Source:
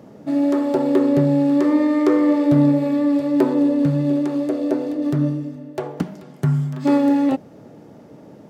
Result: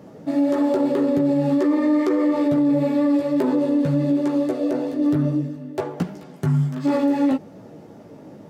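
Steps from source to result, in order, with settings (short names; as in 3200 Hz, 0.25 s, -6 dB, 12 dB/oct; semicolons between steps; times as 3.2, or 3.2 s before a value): chorus voices 4, 0.71 Hz, delay 15 ms, depth 4.8 ms; limiter -16.5 dBFS, peak gain reduction 9 dB; gain +4 dB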